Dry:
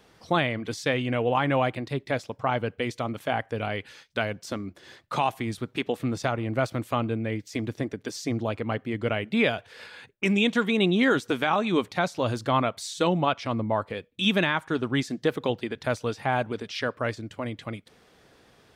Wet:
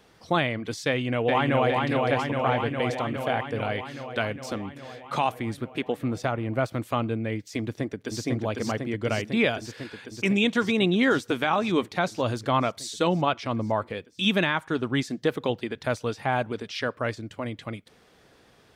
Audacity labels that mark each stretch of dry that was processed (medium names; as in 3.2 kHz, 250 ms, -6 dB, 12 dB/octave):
0.870000	1.690000	echo throw 410 ms, feedback 75%, level -2.5 dB
5.320000	6.730000	peaking EQ 5.5 kHz -4.5 dB 2.1 oct
7.610000	8.210000	echo throw 500 ms, feedback 80%, level -2.5 dB